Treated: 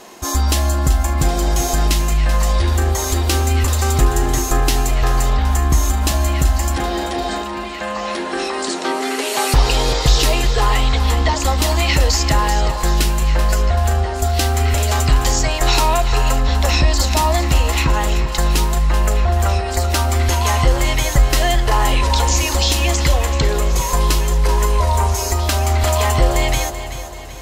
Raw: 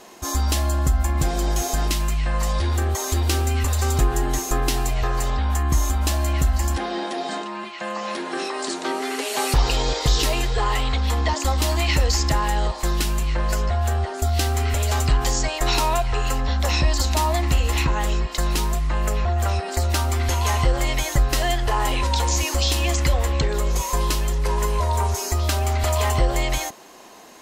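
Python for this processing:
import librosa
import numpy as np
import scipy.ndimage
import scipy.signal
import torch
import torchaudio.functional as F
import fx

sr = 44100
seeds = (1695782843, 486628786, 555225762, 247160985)

y = fx.echo_feedback(x, sr, ms=384, feedback_pct=48, wet_db=-11.5)
y = y * librosa.db_to_amplitude(5.0)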